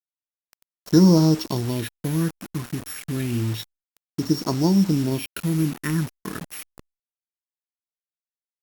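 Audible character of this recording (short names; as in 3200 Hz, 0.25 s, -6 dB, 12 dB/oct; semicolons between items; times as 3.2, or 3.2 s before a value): a buzz of ramps at a fixed pitch in blocks of 8 samples; phasing stages 4, 0.29 Hz, lowest notch 650–2700 Hz; a quantiser's noise floor 6-bit, dither none; Opus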